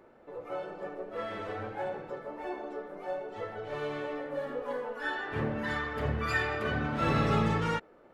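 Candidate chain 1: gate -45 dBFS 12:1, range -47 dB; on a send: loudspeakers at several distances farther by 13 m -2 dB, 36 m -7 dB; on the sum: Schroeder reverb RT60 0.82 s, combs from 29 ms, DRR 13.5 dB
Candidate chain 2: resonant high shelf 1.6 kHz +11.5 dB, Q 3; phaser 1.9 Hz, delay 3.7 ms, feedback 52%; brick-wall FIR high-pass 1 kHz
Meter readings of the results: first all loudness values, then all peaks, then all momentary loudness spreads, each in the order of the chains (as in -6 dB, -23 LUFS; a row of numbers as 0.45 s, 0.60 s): -31.0 LUFS, -24.0 LUFS; -11.0 dBFS, -5.0 dBFS; 12 LU, 19 LU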